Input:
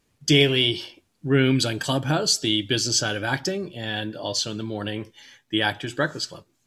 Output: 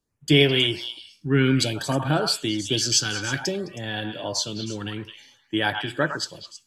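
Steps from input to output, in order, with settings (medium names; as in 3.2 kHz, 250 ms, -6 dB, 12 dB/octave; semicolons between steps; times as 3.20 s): repeats whose band climbs or falls 106 ms, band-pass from 1.1 kHz, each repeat 1.4 oct, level -3 dB; in parallel at +1 dB: compression, threshold -32 dBFS, peak gain reduction 18 dB; on the sum: LFO notch sine 0.56 Hz 590–6800 Hz; three bands expanded up and down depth 40%; trim -2.5 dB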